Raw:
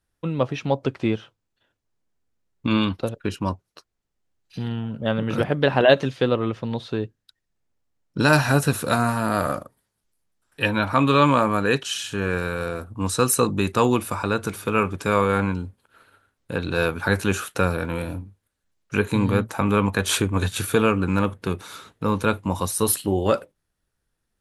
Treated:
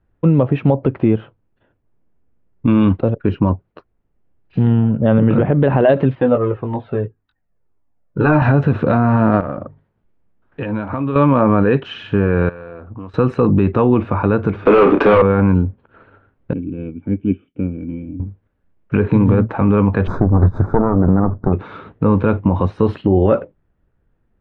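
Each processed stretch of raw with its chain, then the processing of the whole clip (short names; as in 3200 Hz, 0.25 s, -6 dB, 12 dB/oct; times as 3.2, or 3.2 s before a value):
6.15–8.42 doubler 20 ms -7 dB + overdrive pedal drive 9 dB, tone 1200 Hz, clips at -2 dBFS + cascading flanger falling 1.8 Hz
9.4–11.16 notches 50/100/150 Hz + compressor 4:1, threshold -32 dBFS
12.49–13.14 low shelf 350 Hz -9.5 dB + compressor 5:1, threshold -41 dBFS + Doppler distortion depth 0.13 ms
14.65–15.22 HPF 280 Hz 24 dB/oct + sample leveller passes 5 + doubler 30 ms -9.5 dB
16.53–18.2 vocal tract filter i + upward expander, over -47 dBFS
20.07–21.53 minimum comb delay 0.79 ms + Butterworth band-stop 2800 Hz, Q 0.62
whole clip: LPF 2800 Hz 24 dB/oct; tilt shelf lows +7.5 dB, about 1100 Hz; limiter -11.5 dBFS; gain +7.5 dB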